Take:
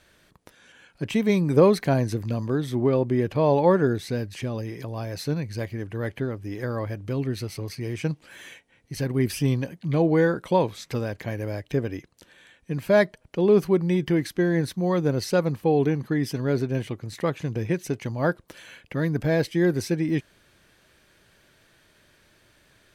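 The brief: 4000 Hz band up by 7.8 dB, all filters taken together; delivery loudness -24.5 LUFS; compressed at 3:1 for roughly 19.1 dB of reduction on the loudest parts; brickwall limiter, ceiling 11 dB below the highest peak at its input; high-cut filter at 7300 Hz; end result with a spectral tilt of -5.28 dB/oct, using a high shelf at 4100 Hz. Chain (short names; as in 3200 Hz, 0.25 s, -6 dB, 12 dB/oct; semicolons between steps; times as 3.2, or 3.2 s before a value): LPF 7300 Hz; bell 4000 Hz +8 dB; high shelf 4100 Hz +3 dB; compressor 3:1, threshold -40 dBFS; gain +19 dB; limiter -15 dBFS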